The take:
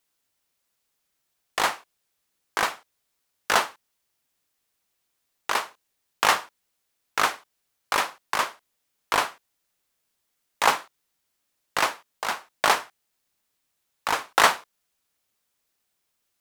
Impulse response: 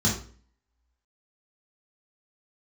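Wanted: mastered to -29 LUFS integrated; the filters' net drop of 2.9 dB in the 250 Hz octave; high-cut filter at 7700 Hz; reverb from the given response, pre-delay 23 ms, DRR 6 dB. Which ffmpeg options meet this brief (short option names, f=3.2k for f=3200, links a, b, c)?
-filter_complex "[0:a]lowpass=7.7k,equalizer=f=250:t=o:g=-4,asplit=2[a][b];[1:a]atrim=start_sample=2205,adelay=23[c];[b][c]afir=irnorm=-1:irlink=0,volume=-17.5dB[d];[a][d]amix=inputs=2:normalize=0,volume=-4dB"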